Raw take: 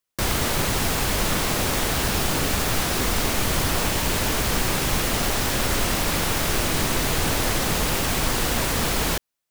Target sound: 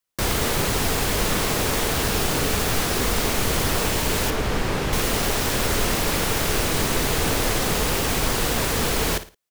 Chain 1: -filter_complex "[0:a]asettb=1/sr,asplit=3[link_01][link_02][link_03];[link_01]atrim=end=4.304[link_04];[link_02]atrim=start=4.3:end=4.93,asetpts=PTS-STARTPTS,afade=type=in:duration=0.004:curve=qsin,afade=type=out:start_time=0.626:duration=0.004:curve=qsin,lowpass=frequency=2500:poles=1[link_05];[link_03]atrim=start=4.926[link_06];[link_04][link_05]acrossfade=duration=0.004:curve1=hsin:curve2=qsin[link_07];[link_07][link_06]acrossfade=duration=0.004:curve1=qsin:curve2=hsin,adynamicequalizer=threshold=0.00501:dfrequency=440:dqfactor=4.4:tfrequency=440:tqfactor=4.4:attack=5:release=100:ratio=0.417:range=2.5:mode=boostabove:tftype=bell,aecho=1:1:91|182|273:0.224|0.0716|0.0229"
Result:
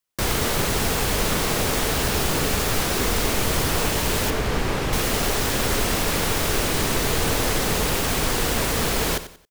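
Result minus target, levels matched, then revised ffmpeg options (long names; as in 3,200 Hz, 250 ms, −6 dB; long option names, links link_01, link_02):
echo 35 ms late
-filter_complex "[0:a]asettb=1/sr,asplit=3[link_01][link_02][link_03];[link_01]atrim=end=4.304[link_04];[link_02]atrim=start=4.3:end=4.93,asetpts=PTS-STARTPTS,afade=type=in:duration=0.004:curve=qsin,afade=type=out:start_time=0.626:duration=0.004:curve=qsin,lowpass=frequency=2500:poles=1[link_05];[link_03]atrim=start=4.926[link_06];[link_04][link_05]acrossfade=duration=0.004:curve1=hsin:curve2=qsin[link_07];[link_07][link_06]acrossfade=duration=0.004:curve1=qsin:curve2=hsin,adynamicequalizer=threshold=0.00501:dfrequency=440:dqfactor=4.4:tfrequency=440:tqfactor=4.4:attack=5:release=100:ratio=0.417:range=2.5:mode=boostabove:tftype=bell,aecho=1:1:56|112|168:0.224|0.0716|0.0229"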